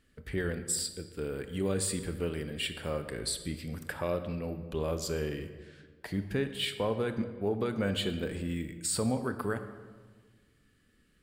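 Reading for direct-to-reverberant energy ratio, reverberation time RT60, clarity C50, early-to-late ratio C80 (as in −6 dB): 9.0 dB, 1.5 s, 10.5 dB, 11.5 dB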